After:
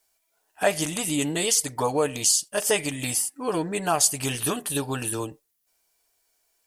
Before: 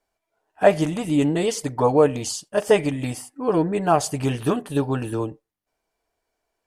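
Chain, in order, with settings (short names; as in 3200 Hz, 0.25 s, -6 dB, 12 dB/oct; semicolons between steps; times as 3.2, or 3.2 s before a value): pre-emphasis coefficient 0.9; in parallel at +2 dB: compressor, threshold -39 dBFS, peak gain reduction 13.5 dB; on the sum: gain +7.5 dB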